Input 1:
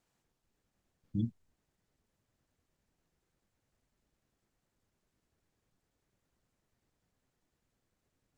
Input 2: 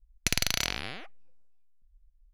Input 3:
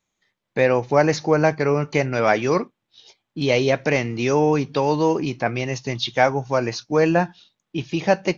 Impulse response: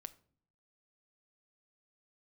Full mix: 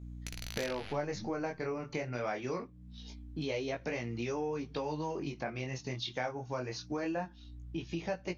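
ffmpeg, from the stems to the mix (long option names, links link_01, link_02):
-filter_complex "[0:a]volume=0dB[link_01];[1:a]volume=2dB[link_02];[2:a]aeval=exprs='val(0)+0.00891*(sin(2*PI*60*n/s)+sin(2*PI*2*60*n/s)/2+sin(2*PI*3*60*n/s)/3+sin(2*PI*4*60*n/s)/4+sin(2*PI*5*60*n/s)/5)':channel_layout=same,volume=-2.5dB,asplit=3[link_03][link_04][link_05];[link_04]volume=-20.5dB[link_06];[link_05]apad=whole_len=103071[link_07];[link_02][link_07]sidechaingate=range=-33dB:threshold=-42dB:ratio=16:detection=peak[link_08];[3:a]atrim=start_sample=2205[link_09];[link_06][link_09]afir=irnorm=-1:irlink=0[link_10];[link_01][link_08][link_03][link_10]amix=inputs=4:normalize=0,flanger=delay=17:depth=7.5:speed=0.24,acompressor=threshold=-37dB:ratio=3"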